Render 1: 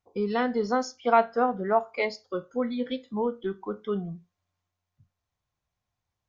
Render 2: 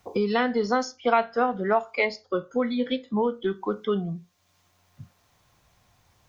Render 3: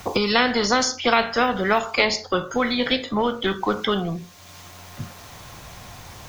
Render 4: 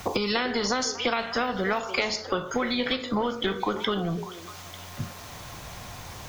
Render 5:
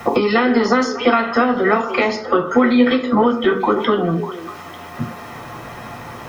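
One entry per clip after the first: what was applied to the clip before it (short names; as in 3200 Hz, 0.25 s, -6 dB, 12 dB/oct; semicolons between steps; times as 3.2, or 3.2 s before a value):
dynamic EQ 2800 Hz, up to +6 dB, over -41 dBFS, Q 0.71; three-band squash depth 70%; gain +1.5 dB
spectral compressor 2:1; gain +3 dB
compressor, threshold -23 dBFS, peak gain reduction 10 dB; delay with a stepping band-pass 0.298 s, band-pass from 400 Hz, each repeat 1.4 oct, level -9 dB
reverb RT60 0.15 s, pre-delay 3 ms, DRR 0.5 dB; gain -1.5 dB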